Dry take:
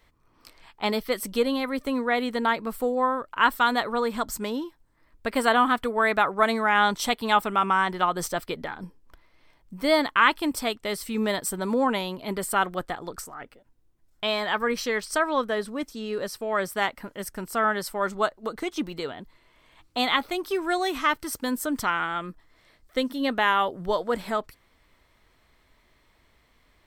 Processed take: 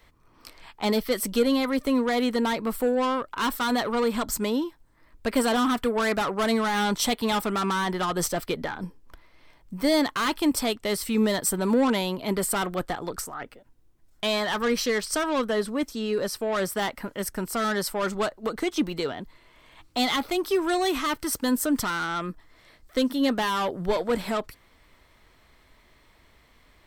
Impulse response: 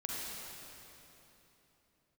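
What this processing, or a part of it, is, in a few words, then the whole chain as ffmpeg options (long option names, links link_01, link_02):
one-band saturation: -filter_complex "[0:a]acrossover=split=410|4100[link_01][link_02][link_03];[link_02]asoftclip=type=tanh:threshold=-29.5dB[link_04];[link_01][link_04][link_03]amix=inputs=3:normalize=0,volume=4.5dB"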